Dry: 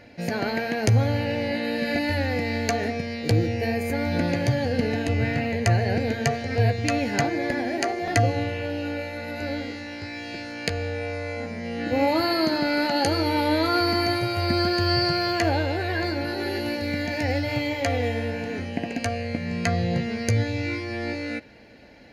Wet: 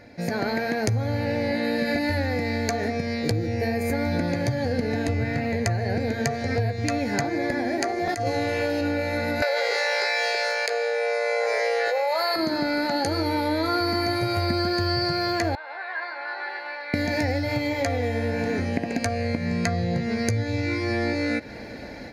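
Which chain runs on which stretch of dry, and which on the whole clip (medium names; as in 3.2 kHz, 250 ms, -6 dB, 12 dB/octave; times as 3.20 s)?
8.09–8.81 s: tone controls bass -9 dB, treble +5 dB + compressor with a negative ratio -25 dBFS, ratio -0.5
9.42–12.36 s: steep high-pass 420 Hz 72 dB/octave + level flattener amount 100%
15.55–16.94 s: ladder high-pass 830 Hz, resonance 35% + distance through air 370 m
whole clip: level rider; peaking EQ 2.9 kHz -13 dB 0.26 oct; compression, threshold -23 dBFS; trim +1 dB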